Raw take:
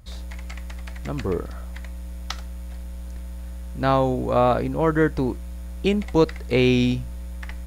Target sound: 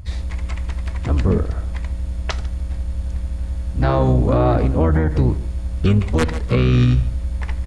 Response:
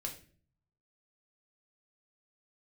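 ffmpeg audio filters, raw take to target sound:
-filter_complex "[0:a]aeval=exprs='(mod(2.37*val(0)+1,2)-1)/2.37':c=same,asplit=2[a][b];[1:a]atrim=start_sample=2205,lowpass=3.5k[c];[b][c]afir=irnorm=-1:irlink=0,volume=-12.5dB[d];[a][d]amix=inputs=2:normalize=0,aresample=22050,aresample=44100,asoftclip=type=hard:threshold=-6.5dB,aecho=1:1:147|294:0.0944|0.0151,asplit=3[e][f][g];[f]asetrate=22050,aresample=44100,atempo=2,volume=-2dB[h];[g]asetrate=52444,aresample=44100,atempo=0.840896,volume=-11dB[i];[e][h][i]amix=inputs=3:normalize=0,equalizer=f=82:w=1.6:g=14.5,alimiter=level_in=8.5dB:limit=-1dB:release=50:level=0:latency=1,volume=-6.5dB"

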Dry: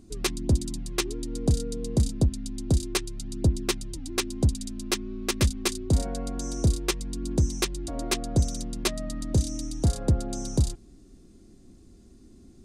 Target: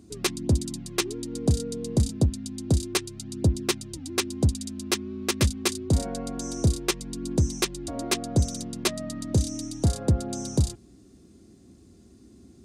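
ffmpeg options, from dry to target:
-af "highpass=f=63:w=0.5412,highpass=f=63:w=1.3066,volume=1.5dB"

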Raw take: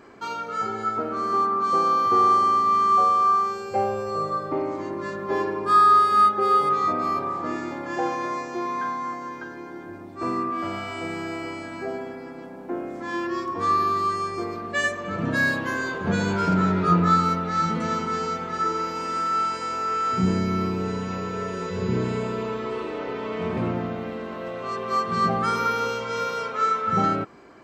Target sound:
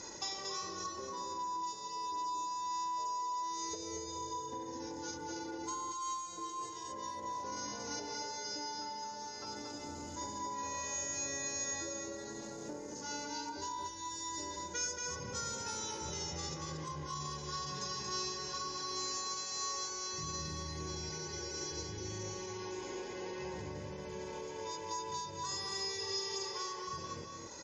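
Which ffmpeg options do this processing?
-filter_complex "[0:a]asetrate=37084,aresample=44100,atempo=1.18921,equalizer=f=160:t=o:w=0.33:g=-6,equalizer=f=800:t=o:w=0.33:g=4,equalizer=f=1.25k:t=o:w=0.33:g=-10,equalizer=f=5k:t=o:w=0.33:g=10,alimiter=limit=-18.5dB:level=0:latency=1,lowpass=f=6.7k:t=q:w=13,aecho=1:1:2:0.5,acompressor=threshold=-41dB:ratio=6,highshelf=f=3.7k:g=12,bandreject=f=660:w=12,asplit=2[a][b];[b]aecho=0:1:230:0.631[c];[a][c]amix=inputs=2:normalize=0,volume=-2.5dB"

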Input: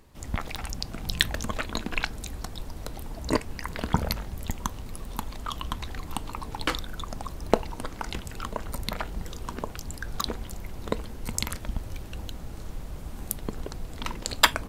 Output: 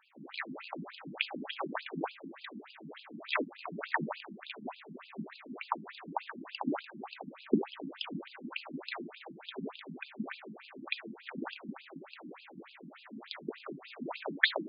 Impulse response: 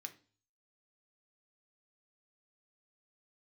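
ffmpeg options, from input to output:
-filter_complex "[0:a]acrusher=samples=20:mix=1:aa=0.000001:lfo=1:lforange=12:lforate=2,asplit=3[a][b][c];[a]afade=t=out:st=13.75:d=0.02[d];[b]aemphasis=mode=production:type=75kf,afade=t=in:st=13.75:d=0.02,afade=t=out:st=14.34:d=0.02[e];[c]afade=t=in:st=14.34:d=0.02[f];[d][e][f]amix=inputs=3:normalize=0[g];[1:a]atrim=start_sample=2205,afade=t=out:st=0.13:d=0.01,atrim=end_sample=6174[h];[g][h]afir=irnorm=-1:irlink=0,afftfilt=real='re*between(b*sr/1024,220*pow(3600/220,0.5+0.5*sin(2*PI*3.4*pts/sr))/1.41,220*pow(3600/220,0.5+0.5*sin(2*PI*3.4*pts/sr))*1.41)':imag='im*between(b*sr/1024,220*pow(3600/220,0.5+0.5*sin(2*PI*3.4*pts/sr))/1.41,220*pow(3600/220,0.5+0.5*sin(2*PI*3.4*pts/sr))*1.41)':win_size=1024:overlap=0.75,volume=9.5dB"

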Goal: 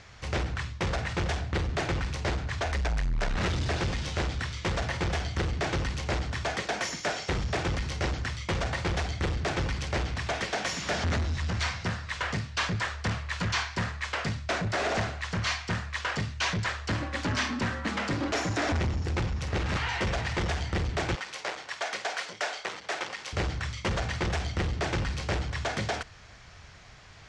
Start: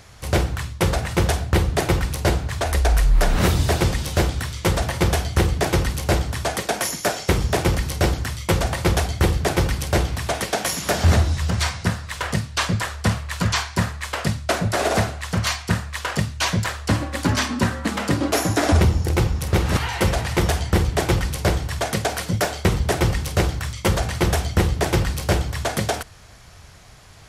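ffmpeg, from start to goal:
-filter_complex "[0:a]asoftclip=type=tanh:threshold=-19.5dB,lowpass=f=6.8k:w=0.5412,lowpass=f=6.8k:w=1.3066,equalizer=f=2k:w=0.91:g=5,asettb=1/sr,asplit=3[a][b][c];[a]atrim=end=21.154[d];[b]atrim=start=21.15:end=23.33,asetpts=PTS-STARTPTS,afade=t=in:d=0.004:c=qsin,afade=t=out:st=2.176:d=0.004:c=qsin,highpass=580[e];[c]atrim=start=23.326[f];[d][e]acrossfade=d=0.004:c1=hsin:c2=qsin[g];[g][f]acrossfade=d=0.004:c1=qsin:c2=hsin,volume=-5.5dB"

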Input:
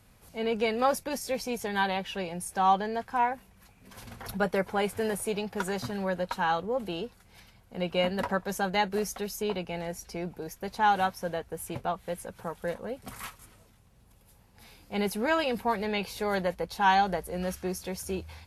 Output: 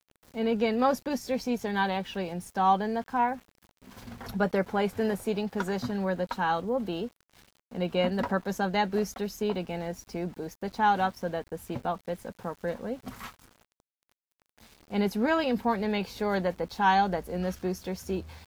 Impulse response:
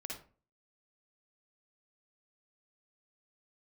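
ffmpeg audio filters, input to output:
-af "equalizer=f=250:t=o:w=0.67:g=7,equalizer=f=2.5k:t=o:w=0.67:g=-3,equalizer=f=10k:t=o:w=0.67:g=-12,aeval=exprs='val(0)*gte(abs(val(0)),0.00316)':c=same"

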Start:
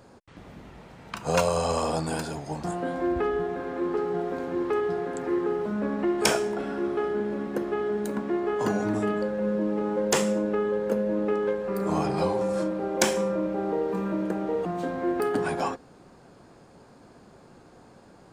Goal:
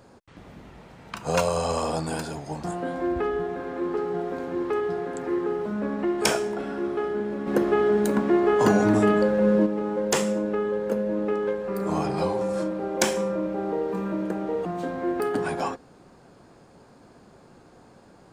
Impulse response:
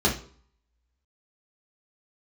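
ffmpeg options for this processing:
-filter_complex "[0:a]asplit=3[a][b][c];[a]afade=t=out:st=7.46:d=0.02[d];[b]acontrast=82,afade=t=in:st=7.46:d=0.02,afade=t=out:st=9.65:d=0.02[e];[c]afade=t=in:st=9.65:d=0.02[f];[d][e][f]amix=inputs=3:normalize=0"

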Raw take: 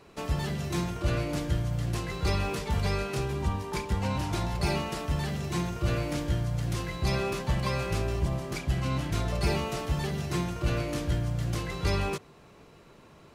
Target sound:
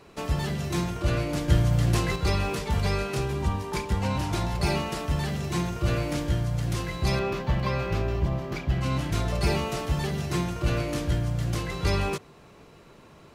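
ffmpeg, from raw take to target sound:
-filter_complex "[0:a]asettb=1/sr,asplit=3[a][b][c];[a]atrim=end=1.484[d];[b]atrim=start=1.48:end=2.16,asetpts=PTS-STARTPTS,afade=t=in:d=0.004:c=qsin,afade=t=out:st=0.676:d=0.004:c=qsin,acontrast=31[e];[c]atrim=start=2.156[f];[d][e]acrossfade=d=0.004:c1=hsin:c2=qsin[g];[g][f]acrossfade=d=0.004:c1=qsin:c2=hsin,asettb=1/sr,asplit=3[h][i][j];[h]atrim=end=7.194[k];[i]atrim=start=7.19:end=8.81,asetpts=PTS-STARTPTS,afade=t=in:d=0.004:c=qsin,afade=t=out:st=1.616:d=0.004:c=qsin,equalizer=f=9.3k:w=0.78:g=-15[l];[j]atrim=start=8.806[m];[k][l]acrossfade=d=0.004:c1=hsin:c2=qsin[n];[n][m]acrossfade=d=0.004:c1=qsin:c2=hsin,volume=2.5dB"

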